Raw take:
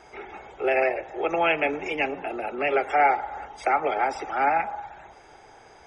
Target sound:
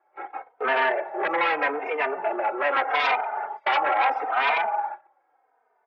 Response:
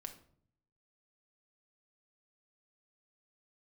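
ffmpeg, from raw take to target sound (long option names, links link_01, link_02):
-filter_complex "[0:a]acrossover=split=1600[link_01][link_02];[link_01]aeval=exprs='0.335*sin(PI/2*5.01*val(0)/0.335)':channel_layout=same[link_03];[link_03][link_02]amix=inputs=2:normalize=0,highpass=710,lowpass=2300,agate=range=-24dB:threshold=-27dB:ratio=16:detection=peak,asplit=2[link_04][link_05];[link_05]adelay=3.1,afreqshift=-0.8[link_06];[link_04][link_06]amix=inputs=2:normalize=1,volume=-3dB"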